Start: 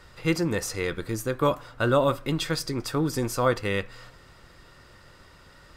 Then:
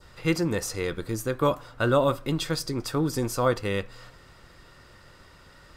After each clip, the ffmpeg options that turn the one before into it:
-af "adynamicequalizer=threshold=0.00631:dfrequency=2000:dqfactor=1.2:tfrequency=2000:tqfactor=1.2:attack=5:release=100:ratio=0.375:range=2.5:mode=cutabove:tftype=bell"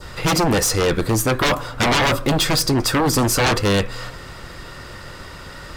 -af "aeval=exprs='0.299*sin(PI/2*5.62*val(0)/0.299)':c=same,volume=0.708"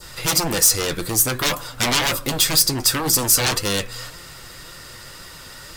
-af "crystalizer=i=4:c=0,flanger=delay=5.7:depth=2.7:regen=61:speed=1.9:shape=sinusoidal,volume=0.708"

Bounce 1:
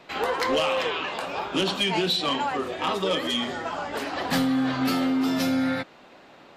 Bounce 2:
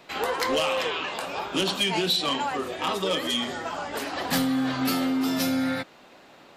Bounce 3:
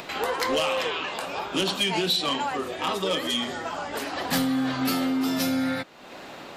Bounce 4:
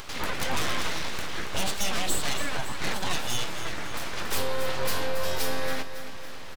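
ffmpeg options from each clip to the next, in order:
-af "highshelf=f=6800:g=10.5,volume=0.841"
-af "acompressor=mode=upward:threshold=0.0316:ratio=2.5"
-af "aeval=exprs='abs(val(0))':c=same,aecho=1:1:278|556|834|1112|1390|1668:0.299|0.161|0.0871|0.047|0.0254|0.0137"

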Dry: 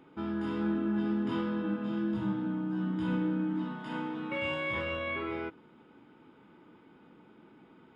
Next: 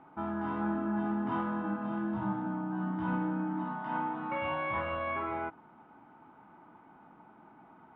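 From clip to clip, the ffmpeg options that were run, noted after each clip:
-af "lowpass=1300,lowshelf=f=590:t=q:w=3:g=-6.5,volume=1.88"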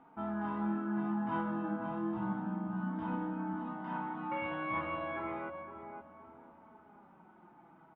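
-filter_complex "[0:a]asplit=2[s0][s1];[s1]adelay=515,lowpass=f=1100:p=1,volume=0.447,asplit=2[s2][s3];[s3]adelay=515,lowpass=f=1100:p=1,volume=0.44,asplit=2[s4][s5];[s5]adelay=515,lowpass=f=1100:p=1,volume=0.44,asplit=2[s6][s7];[s7]adelay=515,lowpass=f=1100:p=1,volume=0.44,asplit=2[s8][s9];[s9]adelay=515,lowpass=f=1100:p=1,volume=0.44[s10];[s0][s2][s4][s6][s8][s10]amix=inputs=6:normalize=0,flanger=delay=4.2:depth=2.2:regen=36:speed=0.31:shape=triangular"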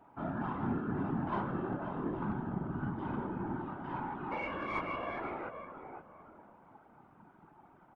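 -af "aeval=exprs='0.0668*(cos(1*acos(clip(val(0)/0.0668,-1,1)))-cos(1*PI/2))+0.00422*(cos(3*acos(clip(val(0)/0.0668,-1,1)))-cos(3*PI/2))+0.0015*(cos(6*acos(clip(val(0)/0.0668,-1,1)))-cos(6*PI/2))':c=same,afftfilt=real='hypot(re,im)*cos(2*PI*random(0))':imag='hypot(re,im)*sin(2*PI*random(1))':win_size=512:overlap=0.75,volume=2.24"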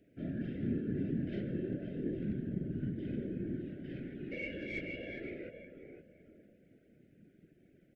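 -af "asuperstop=centerf=1000:order=8:qfactor=0.8"

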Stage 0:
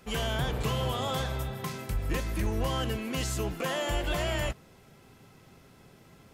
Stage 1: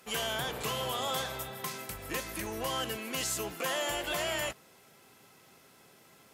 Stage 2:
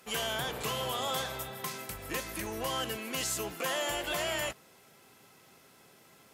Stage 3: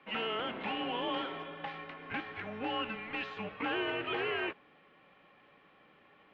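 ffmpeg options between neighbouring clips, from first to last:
-af "highpass=f=510:p=1,equalizer=f=13000:w=0.43:g=6"
-af anull
-af "highpass=f=450:t=q:w=0.5412,highpass=f=450:t=q:w=1.307,lowpass=f=3300:t=q:w=0.5176,lowpass=f=3300:t=q:w=0.7071,lowpass=f=3300:t=q:w=1.932,afreqshift=-230"

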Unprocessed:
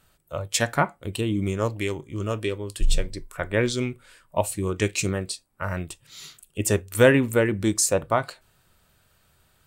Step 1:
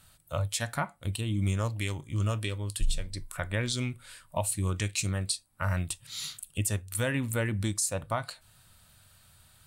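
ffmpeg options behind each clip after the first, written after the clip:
-filter_complex "[0:a]equalizer=f=100:t=o:w=0.67:g=6,equalizer=f=400:t=o:w=0.67:g=-10,equalizer=f=4000:t=o:w=0.67:g=5,equalizer=f=10000:t=o:w=0.67:g=9,asplit=2[s0][s1];[s1]acompressor=threshold=0.0282:ratio=6,volume=0.75[s2];[s0][s2]amix=inputs=2:normalize=0,alimiter=limit=0.2:level=0:latency=1:release=424,volume=0.631"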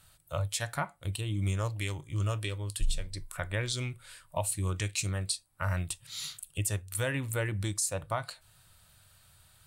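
-af "equalizer=f=230:t=o:w=0.27:g=-13,volume=0.841"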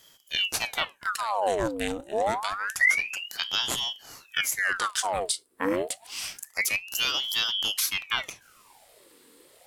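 -af "aeval=exprs='val(0)*sin(2*PI*1800*n/s+1800*0.8/0.27*sin(2*PI*0.27*n/s))':c=same,volume=2.24"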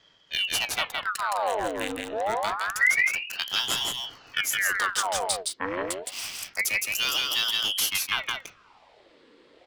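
-filter_complex "[0:a]acrossover=split=610|4600[s0][s1][s2];[s0]asoftclip=type=tanh:threshold=0.0188[s3];[s2]acrusher=bits=5:mix=0:aa=0.5[s4];[s3][s1][s4]amix=inputs=3:normalize=0,aecho=1:1:166:0.708"

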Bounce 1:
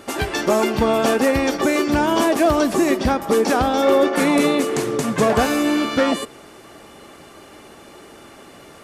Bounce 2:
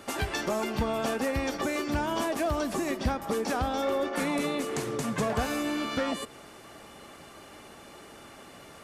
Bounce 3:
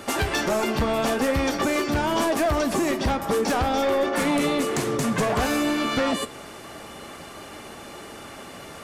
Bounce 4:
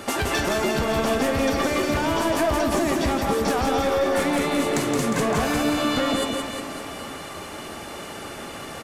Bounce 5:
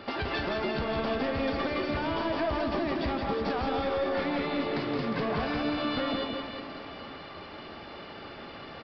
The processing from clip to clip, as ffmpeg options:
-filter_complex "[0:a]acrossover=split=120[s0][s1];[s1]acompressor=threshold=0.0562:ratio=2[s2];[s0][s2]amix=inputs=2:normalize=0,equalizer=f=360:w=1.6:g=-4,volume=0.596"
-af "aeval=exprs='0.224*sin(PI/2*2.82*val(0)/0.224)':c=same,flanger=delay=8.4:depth=4.2:regen=-78:speed=0.51:shape=sinusoidal"
-filter_complex "[0:a]acompressor=threshold=0.0631:ratio=6,asplit=2[s0][s1];[s1]aecho=0:1:170|357|562.7|789|1038:0.631|0.398|0.251|0.158|0.1[s2];[s0][s2]amix=inputs=2:normalize=0,volume=1.33"
-af "aresample=11025,aresample=44100,volume=0.422"

